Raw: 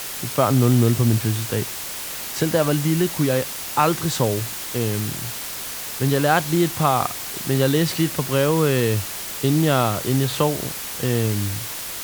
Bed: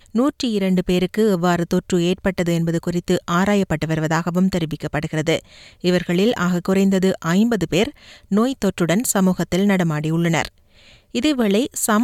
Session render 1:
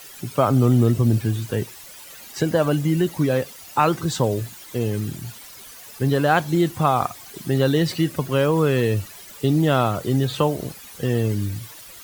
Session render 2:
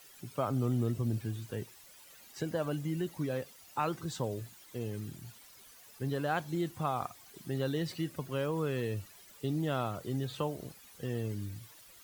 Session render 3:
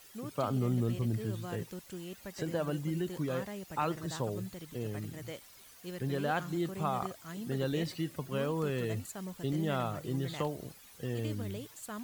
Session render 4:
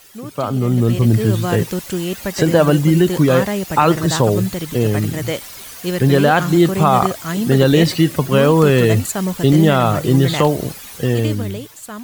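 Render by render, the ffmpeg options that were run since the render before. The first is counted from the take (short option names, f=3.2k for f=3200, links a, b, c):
-af "afftdn=nr=14:nf=-31"
-af "volume=-14.5dB"
-filter_complex "[1:a]volume=-25.5dB[a];[0:a][a]amix=inputs=2:normalize=0"
-af "dynaudnorm=f=110:g=17:m=11dB,alimiter=level_in=10.5dB:limit=-1dB:release=50:level=0:latency=1"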